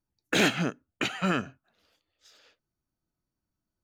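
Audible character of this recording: noise floor -87 dBFS; spectral tilt -4.0 dB/octave

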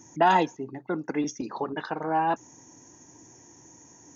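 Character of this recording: noise floor -54 dBFS; spectral tilt -4.0 dB/octave

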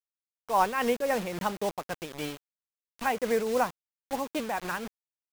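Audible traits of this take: a quantiser's noise floor 6-bit, dither none; tremolo triangle 3.7 Hz, depth 55%

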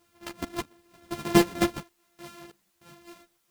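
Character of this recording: a buzz of ramps at a fixed pitch in blocks of 128 samples; random-step tremolo 3.2 Hz, depth 95%; a quantiser's noise floor 12-bit, dither triangular; a shimmering, thickened sound

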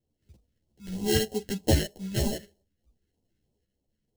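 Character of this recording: aliases and images of a low sample rate 1.2 kHz, jitter 0%; phasing stages 2, 3.2 Hz, lowest notch 800–1600 Hz; tremolo saw up 0.55 Hz, depth 45%; a shimmering, thickened sound

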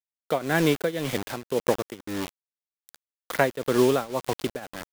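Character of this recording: a quantiser's noise floor 6-bit, dither none; tremolo triangle 1.9 Hz, depth 90%

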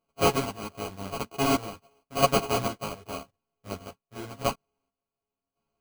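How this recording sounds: a buzz of ramps at a fixed pitch in blocks of 64 samples; chopped level 0.9 Hz, depth 65%, duty 40%; aliases and images of a low sample rate 1.8 kHz, jitter 0%; a shimmering, thickened sound

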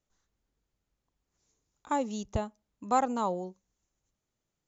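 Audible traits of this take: noise floor -85 dBFS; spectral tilt -5.5 dB/octave

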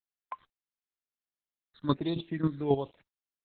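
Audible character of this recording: chopped level 3.7 Hz, depth 65%, duty 15%; a quantiser's noise floor 10-bit, dither none; phasing stages 8, 1.5 Hz, lowest notch 750–1700 Hz; Opus

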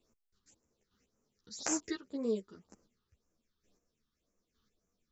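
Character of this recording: phasing stages 6, 1.9 Hz, lowest notch 580–3800 Hz; chopped level 1.1 Hz, depth 60%, duty 15%; a shimmering, thickened sound

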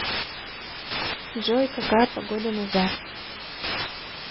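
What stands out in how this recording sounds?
a quantiser's noise floor 6-bit, dither triangular; chopped level 1.1 Hz, depth 65%, duty 25%; MP3

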